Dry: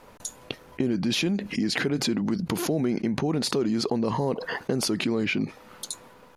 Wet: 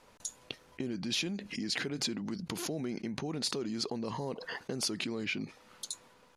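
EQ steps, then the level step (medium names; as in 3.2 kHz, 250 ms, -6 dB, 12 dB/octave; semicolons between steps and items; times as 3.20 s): distance through air 67 m; pre-emphasis filter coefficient 0.8; +2.5 dB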